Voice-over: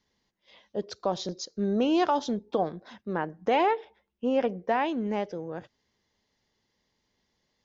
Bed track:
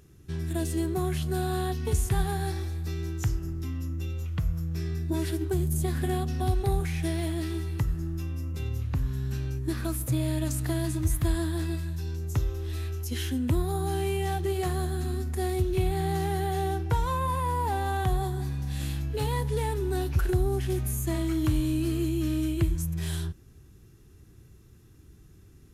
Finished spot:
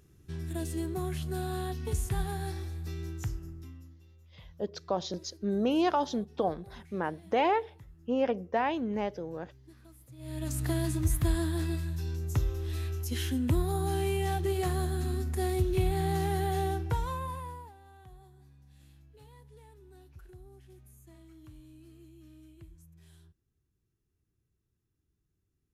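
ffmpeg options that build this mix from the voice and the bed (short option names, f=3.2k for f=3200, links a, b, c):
-filter_complex "[0:a]adelay=3850,volume=-2.5dB[a];[1:a]volume=18dB,afade=t=out:st=3.09:d=0.9:silence=0.105925,afade=t=in:st=10.17:d=0.49:silence=0.0668344,afade=t=out:st=16.58:d=1.15:silence=0.0562341[b];[a][b]amix=inputs=2:normalize=0"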